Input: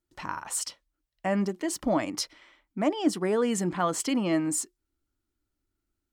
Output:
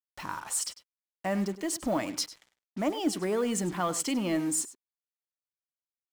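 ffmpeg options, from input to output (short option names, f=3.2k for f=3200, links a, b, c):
-filter_complex "[0:a]highshelf=f=3.7k:g=4,asplit=2[a][b];[b]asoftclip=type=hard:threshold=-28dB,volume=-7.5dB[c];[a][c]amix=inputs=2:normalize=0,acrusher=bits=6:mix=0:aa=0.5,asplit=2[d][e];[e]adelay=99.13,volume=-15dB,highshelf=f=4k:g=-2.23[f];[d][f]amix=inputs=2:normalize=0,volume=-5dB"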